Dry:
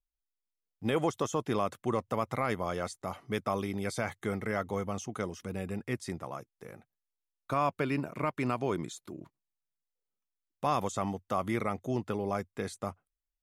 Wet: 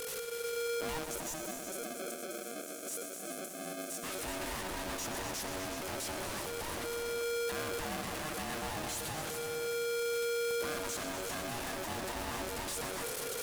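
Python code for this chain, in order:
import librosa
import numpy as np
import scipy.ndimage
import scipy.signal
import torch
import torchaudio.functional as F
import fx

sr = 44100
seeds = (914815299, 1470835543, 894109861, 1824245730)

p1 = fx.delta_mod(x, sr, bps=64000, step_db=-29.5)
p2 = fx.high_shelf(p1, sr, hz=8000.0, db=10.5)
p3 = 10.0 ** (-32.5 / 20.0) * np.tanh(p2 / 10.0 ** (-32.5 / 20.0))
p4 = fx.spec_erase(p3, sr, start_s=1.04, length_s=2.99, low_hz=310.0, high_hz=5900.0)
p5 = p4 + fx.echo_heads(p4, sr, ms=124, heads='all three', feedback_pct=41, wet_db=-10.5, dry=0)
p6 = p5 * np.sign(np.sin(2.0 * np.pi * 470.0 * np.arange(len(p5)) / sr))
y = p6 * 10.0 ** (-4.0 / 20.0)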